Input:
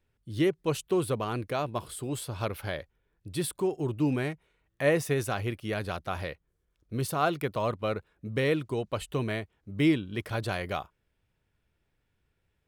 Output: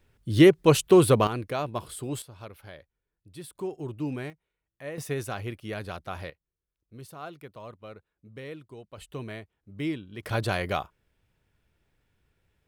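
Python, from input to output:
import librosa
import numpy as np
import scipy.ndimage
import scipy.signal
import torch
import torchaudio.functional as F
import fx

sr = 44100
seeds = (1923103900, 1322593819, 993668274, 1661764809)

y = fx.gain(x, sr, db=fx.steps((0.0, 10.0), (1.27, 0.5), (2.22, -11.5), (3.55, -5.0), (4.3, -13.5), (4.98, -3.0), (6.3, -14.0), (8.98, -7.0), (10.23, 4.0)))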